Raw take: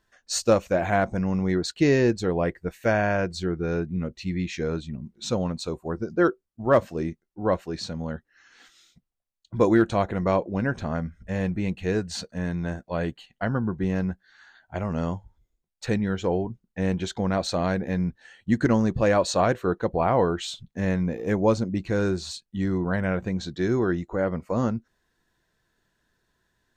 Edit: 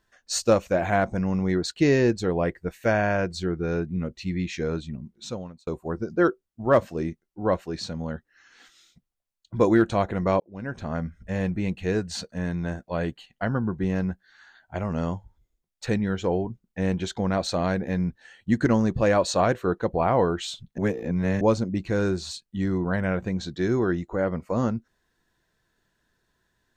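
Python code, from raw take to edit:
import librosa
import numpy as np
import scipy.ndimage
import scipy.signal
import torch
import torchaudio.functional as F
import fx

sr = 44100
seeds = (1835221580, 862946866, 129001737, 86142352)

y = fx.edit(x, sr, fx.fade_out_span(start_s=4.9, length_s=0.77),
    fx.fade_in_span(start_s=10.4, length_s=0.62),
    fx.reverse_span(start_s=20.78, length_s=0.63), tone=tone)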